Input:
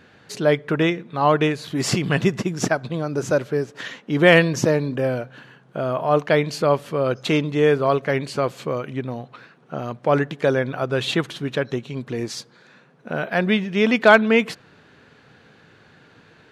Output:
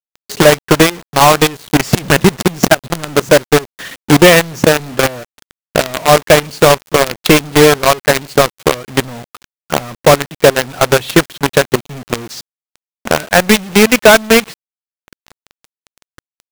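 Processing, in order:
transient designer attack +11 dB, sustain −7 dB
log-companded quantiser 2 bits
level −1 dB

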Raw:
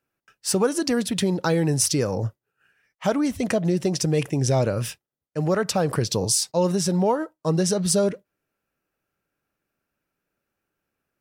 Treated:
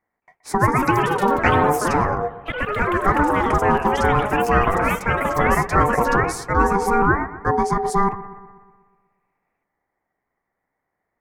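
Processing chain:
high shelf with overshoot 1,800 Hz −12.5 dB, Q 3
ring modulation 590 Hz
bucket-brigade delay 123 ms, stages 2,048, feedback 57%, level −15 dB
delay with pitch and tempo change per echo 221 ms, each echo +3 semitones, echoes 3
level +4.5 dB

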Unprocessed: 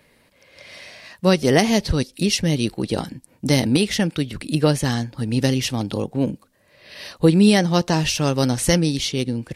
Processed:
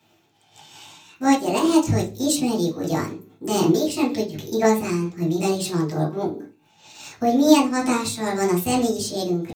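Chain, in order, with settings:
low-shelf EQ 150 Hz +5.5 dB
pitch shifter +6.5 semitones
soft clipping −1.5 dBFS, distortion −27 dB
convolution reverb RT60 0.40 s, pre-delay 3 ms, DRR −3.5 dB
amplitude modulation by smooth noise, depth 65%
level −4 dB

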